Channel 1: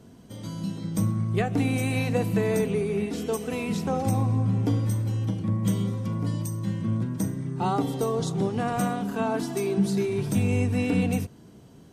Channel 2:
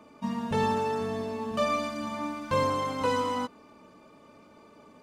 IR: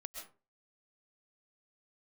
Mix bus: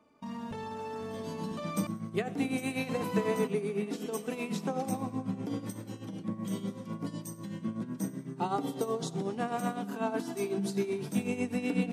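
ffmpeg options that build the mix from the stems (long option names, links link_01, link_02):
-filter_complex "[0:a]highpass=frequency=170:width=0.5412,highpass=frequency=170:width=1.3066,tremolo=f=8:d=0.7,adelay=800,volume=-2.5dB,asplit=2[link_01][link_02];[link_02]volume=-22dB[link_03];[1:a]alimiter=level_in=2.5dB:limit=-24dB:level=0:latency=1:release=22,volume=-2.5dB,volume=-5.5dB,asplit=3[link_04][link_05][link_06];[link_04]atrim=end=1.87,asetpts=PTS-STARTPTS,afade=type=out:start_time=1.866:duration=0.004:curve=hsin[link_07];[link_05]atrim=start=1.87:end=2.89,asetpts=PTS-STARTPTS,volume=0[link_08];[link_06]atrim=start=2.89,asetpts=PTS-STARTPTS,afade=type=in:duration=0.004:curve=hsin[link_09];[link_07][link_08][link_09]concat=n=3:v=0:a=1[link_10];[link_03]aecho=0:1:92|184|276|368|460|552|644:1|0.48|0.23|0.111|0.0531|0.0255|0.0122[link_11];[link_01][link_10][link_11]amix=inputs=3:normalize=0,agate=range=-7dB:threshold=-52dB:ratio=16:detection=peak"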